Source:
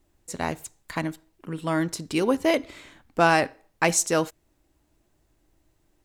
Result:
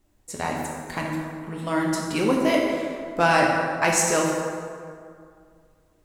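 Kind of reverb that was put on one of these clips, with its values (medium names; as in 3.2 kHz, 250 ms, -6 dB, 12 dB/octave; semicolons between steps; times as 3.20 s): plate-style reverb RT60 2.2 s, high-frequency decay 0.55×, DRR -1.5 dB; trim -1 dB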